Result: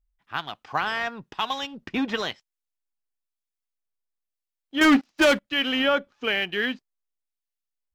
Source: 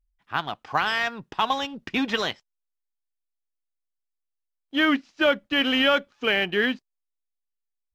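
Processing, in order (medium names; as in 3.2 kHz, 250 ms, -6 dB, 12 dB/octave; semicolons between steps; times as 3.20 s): 4.81–5.48 s: waveshaping leveller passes 3; harmonic tremolo 1 Hz, depth 50%, crossover 1.6 kHz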